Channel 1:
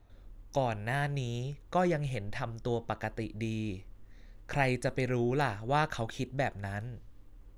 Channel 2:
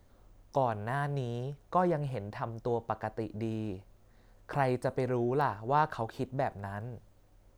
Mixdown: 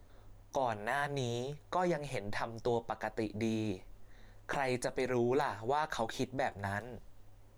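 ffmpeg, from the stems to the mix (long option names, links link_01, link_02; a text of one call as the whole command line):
ffmpeg -i stem1.wav -i stem2.wav -filter_complex "[0:a]flanger=delay=5:depth=9.3:regen=30:speed=1:shape=triangular,adynamicequalizer=threshold=0.00282:dfrequency=3000:dqfactor=0.7:tfrequency=3000:tqfactor=0.7:attack=5:release=100:ratio=0.375:range=3:mode=boostabove:tftype=highshelf,volume=1dB[link_01];[1:a]equalizer=frequency=160:width_type=o:width=0.21:gain=-11.5,volume=-1,volume=0.5dB[link_02];[link_01][link_02]amix=inputs=2:normalize=0,alimiter=limit=-22dB:level=0:latency=1:release=197" out.wav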